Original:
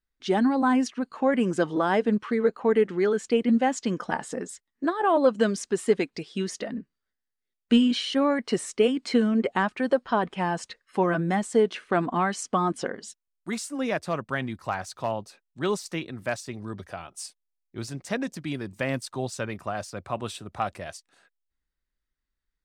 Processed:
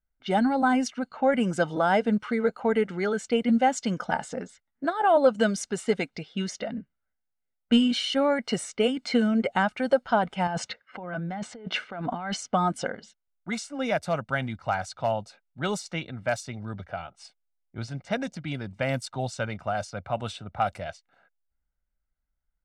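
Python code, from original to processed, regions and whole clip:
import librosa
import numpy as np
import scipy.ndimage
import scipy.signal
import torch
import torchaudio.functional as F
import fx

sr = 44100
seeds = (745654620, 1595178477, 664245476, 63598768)

y = fx.chain(x, sr, fx.highpass(hz=100.0, slope=12),
    fx.over_compress(threshold_db=-33.0, ratio=-1.0),
    fx.air_absorb(metres=55.0), at=(10.47, 12.37))
y = y + 0.56 * np.pad(y, (int(1.4 * sr / 1000.0), 0))[:len(y)]
y = fx.env_lowpass(y, sr, base_hz=1400.0, full_db=-23.5)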